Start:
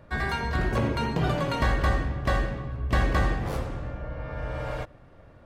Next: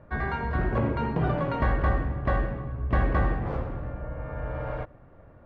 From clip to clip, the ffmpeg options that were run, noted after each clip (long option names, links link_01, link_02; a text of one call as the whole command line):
ffmpeg -i in.wav -af "lowpass=1700" out.wav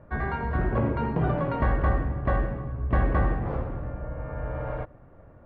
ffmpeg -i in.wav -af "aemphasis=mode=reproduction:type=75fm" out.wav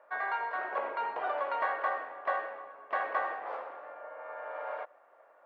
ffmpeg -i in.wav -af "highpass=frequency=620:width=0.5412,highpass=frequency=620:width=1.3066" out.wav